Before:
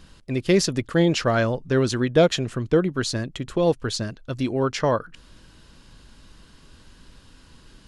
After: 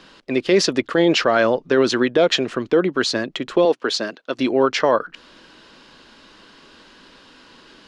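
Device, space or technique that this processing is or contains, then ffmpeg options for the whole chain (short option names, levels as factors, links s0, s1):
DJ mixer with the lows and highs turned down: -filter_complex "[0:a]acrossover=split=240 5500:gain=0.0631 1 0.126[s0][s1][s2];[s0][s1][s2]amix=inputs=3:normalize=0,alimiter=limit=0.168:level=0:latency=1:release=30,asettb=1/sr,asplit=3[s3][s4][s5];[s3]atrim=end=3.654[s6];[s4]atrim=start=3.65:end=4.39,asetpts=PTS-STARTPTS,afade=t=in:d=0.004:c=qsin,afade=t=out:st=0.736:d=0.004:c=qsin,highpass=230[s7];[s5]atrim=start=4.386[s8];[s6][s7]acrossfade=d=0.004:c1=hsin:c2=qsin[s9];[s9][s8]acrossfade=d=0.004:c1=qsin:c2=hsin,volume=2.82"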